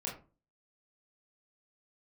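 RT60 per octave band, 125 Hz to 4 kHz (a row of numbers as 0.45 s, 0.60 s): 0.50 s, 0.45 s, 0.35 s, 0.35 s, 0.25 s, 0.20 s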